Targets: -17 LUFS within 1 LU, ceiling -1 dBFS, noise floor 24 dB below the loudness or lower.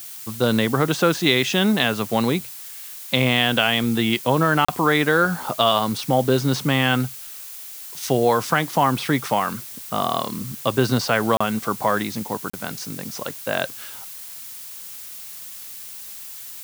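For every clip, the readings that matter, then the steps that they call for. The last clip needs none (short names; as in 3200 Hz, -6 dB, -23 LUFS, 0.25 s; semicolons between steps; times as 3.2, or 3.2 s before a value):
dropouts 3; longest dropout 35 ms; noise floor -37 dBFS; noise floor target -45 dBFS; loudness -21.0 LUFS; peak -1.5 dBFS; loudness target -17.0 LUFS
-> interpolate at 4.65/11.37/12.5, 35 ms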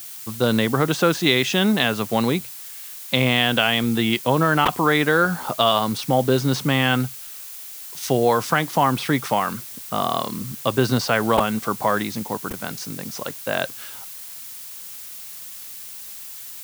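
dropouts 0; noise floor -37 dBFS; noise floor target -45 dBFS
-> noise print and reduce 8 dB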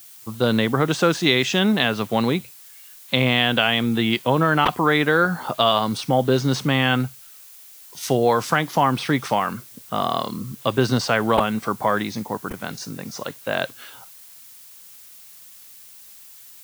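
noise floor -45 dBFS; loudness -21.0 LUFS; peak -1.5 dBFS; loudness target -17.0 LUFS
-> gain +4 dB; limiter -1 dBFS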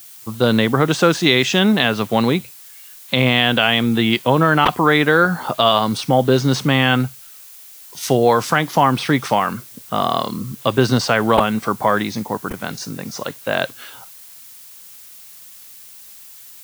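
loudness -17.0 LUFS; peak -1.0 dBFS; noise floor -41 dBFS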